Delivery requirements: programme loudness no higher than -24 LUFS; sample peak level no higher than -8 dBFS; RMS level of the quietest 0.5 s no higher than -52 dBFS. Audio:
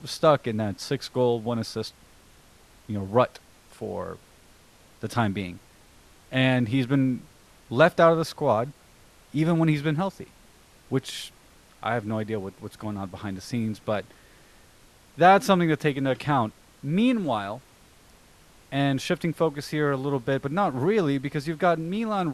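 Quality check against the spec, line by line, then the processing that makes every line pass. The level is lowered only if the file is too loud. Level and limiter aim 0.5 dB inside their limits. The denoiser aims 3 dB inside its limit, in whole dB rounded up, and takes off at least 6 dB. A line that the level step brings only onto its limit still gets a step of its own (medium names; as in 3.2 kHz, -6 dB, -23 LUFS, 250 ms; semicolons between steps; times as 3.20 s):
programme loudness -25.5 LUFS: pass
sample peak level -5.5 dBFS: fail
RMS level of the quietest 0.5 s -55 dBFS: pass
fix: peak limiter -8.5 dBFS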